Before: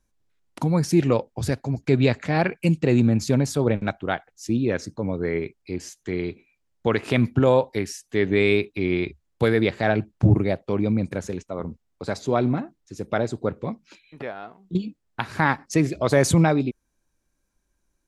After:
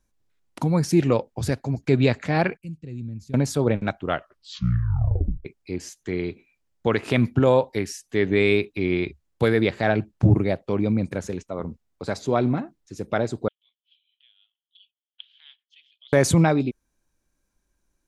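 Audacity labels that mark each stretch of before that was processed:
2.570000	3.340000	guitar amp tone stack bass-middle-treble 10-0-1
4.010000	4.010000	tape stop 1.44 s
13.480000	16.130000	flat-topped band-pass 3,200 Hz, Q 7.1

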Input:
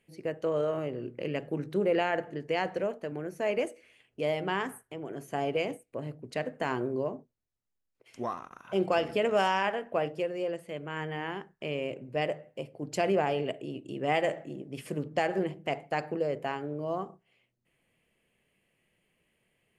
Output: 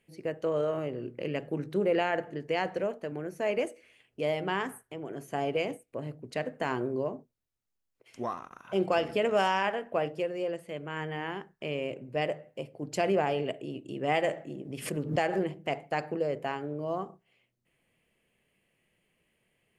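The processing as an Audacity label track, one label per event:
14.480000	15.510000	background raised ahead of every attack at most 100 dB per second

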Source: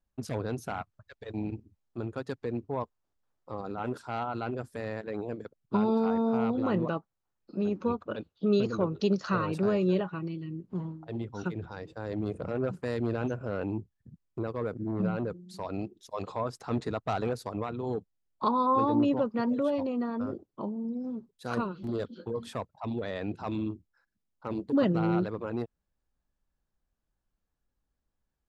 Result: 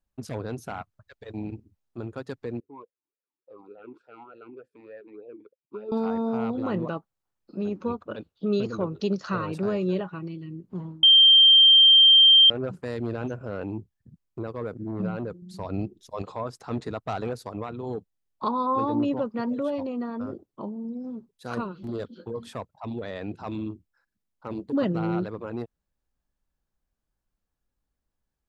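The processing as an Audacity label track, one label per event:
2.600000	5.920000	formant filter swept between two vowels e-u 3.4 Hz
11.030000	12.500000	beep over 3,160 Hz −11 dBFS
15.420000	16.220000	low-shelf EQ 230 Hz +10.5 dB

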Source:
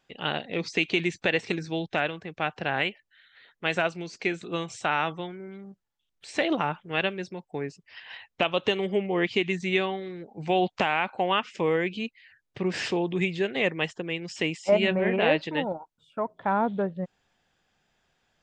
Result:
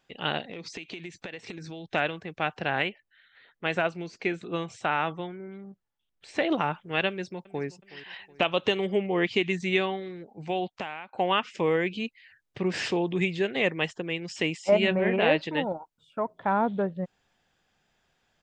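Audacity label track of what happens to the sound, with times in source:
0.470000	1.890000	downward compressor, threshold −36 dBFS
2.820000	6.510000	high-shelf EQ 4,200 Hz −10 dB
7.080000	7.660000	delay throw 370 ms, feedback 50%, level −18 dB
9.920000	11.130000	fade out, to −20.5 dB

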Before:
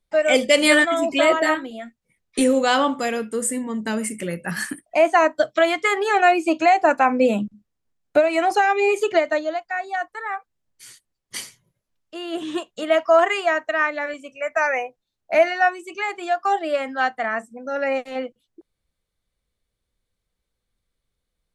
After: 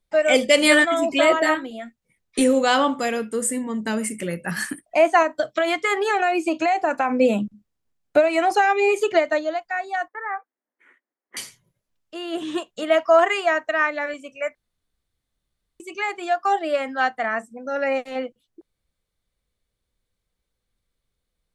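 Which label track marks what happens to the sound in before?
5.220000	7.200000	downward compressor, threshold −16 dBFS
10.080000	11.370000	elliptic band-pass filter 260–2,000 Hz
14.550000	15.800000	fill with room tone

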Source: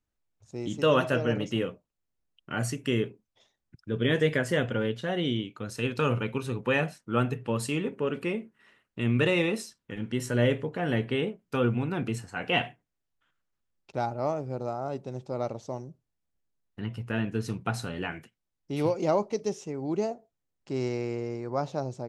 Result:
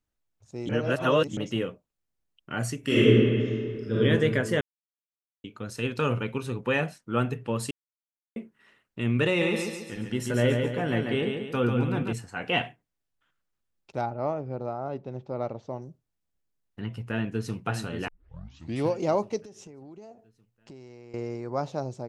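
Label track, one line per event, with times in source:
0.690000	1.370000	reverse
2.800000	3.990000	thrown reverb, RT60 2.2 s, DRR −10 dB
4.610000	5.440000	silence
7.710000	8.360000	silence
9.270000	12.130000	repeating echo 140 ms, feedback 45%, level −5 dB
14.010000	15.820000	low-pass filter 3,100 Hz
16.940000	17.550000	delay throw 580 ms, feedback 50%, level −8 dB
18.080000	18.080000	tape start 0.77 s
19.380000	21.140000	downward compressor 16 to 1, threshold −42 dBFS

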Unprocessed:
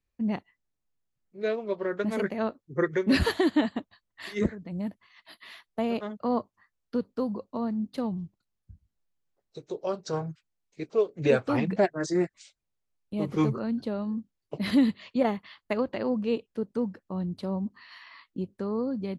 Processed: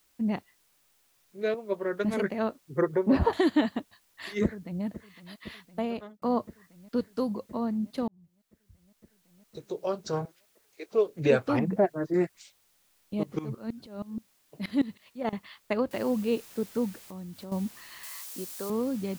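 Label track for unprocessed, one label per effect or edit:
1.540000	2.140000	multiband upward and downward expander depth 100%
2.810000	3.330000	drawn EQ curve 350 Hz 0 dB, 920 Hz +8 dB, 1,700 Hz −10 dB, 9,100 Hz −22 dB
4.430000	4.840000	delay throw 510 ms, feedback 85%, level −15 dB
5.510000	6.220000	fade out equal-power
6.960000	7.500000	high-shelf EQ 3,600 Hz → 5,400 Hz +11.5 dB
8.080000	9.670000	fade in
10.250000	10.920000	high-pass filter 410 Hz 24 dB per octave
11.590000	12.140000	low-pass filter 1,200 Hz
13.230000	15.330000	tremolo with a ramp in dB swelling 6.3 Hz, depth 22 dB
15.910000	15.910000	noise floor change −68 dB −51 dB
17.030000	17.520000	downward compressor 2.5 to 1, threshold −43 dBFS
18.030000	18.700000	bass and treble bass −14 dB, treble +10 dB

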